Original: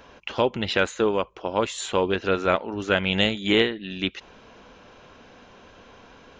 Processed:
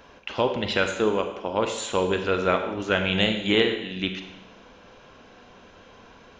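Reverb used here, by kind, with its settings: Schroeder reverb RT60 0.94 s, combs from 33 ms, DRR 6 dB; gain -1.5 dB

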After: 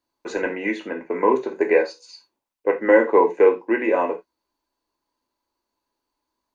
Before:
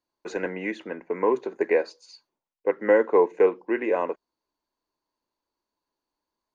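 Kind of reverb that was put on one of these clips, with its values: non-linear reverb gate 0.11 s falling, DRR 3 dB; gain +3.5 dB

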